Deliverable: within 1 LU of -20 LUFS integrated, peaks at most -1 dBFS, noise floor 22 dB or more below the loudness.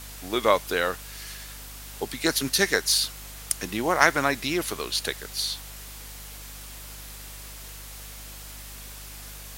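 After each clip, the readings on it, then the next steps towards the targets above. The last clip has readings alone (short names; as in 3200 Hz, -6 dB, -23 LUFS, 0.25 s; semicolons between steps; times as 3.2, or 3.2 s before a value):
hum 50 Hz; harmonics up to 250 Hz; hum level -42 dBFS; noise floor -41 dBFS; noise floor target -47 dBFS; loudness -25.0 LUFS; peak -1.5 dBFS; loudness target -20.0 LUFS
-> de-hum 50 Hz, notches 5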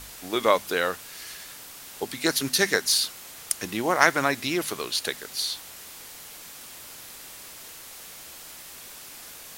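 hum none; noise floor -44 dBFS; noise floor target -47 dBFS
-> denoiser 6 dB, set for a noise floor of -44 dBFS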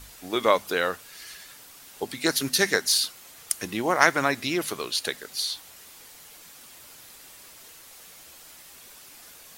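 noise floor -49 dBFS; loudness -25.0 LUFS; peak -1.5 dBFS; loudness target -20.0 LUFS
-> gain +5 dB; limiter -1 dBFS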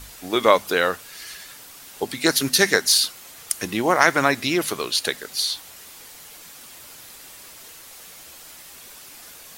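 loudness -20.5 LUFS; peak -1.0 dBFS; noise floor -44 dBFS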